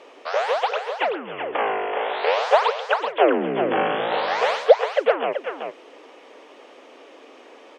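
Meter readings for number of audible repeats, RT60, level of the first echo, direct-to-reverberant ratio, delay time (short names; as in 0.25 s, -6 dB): 1, none, -7.0 dB, none, 0.38 s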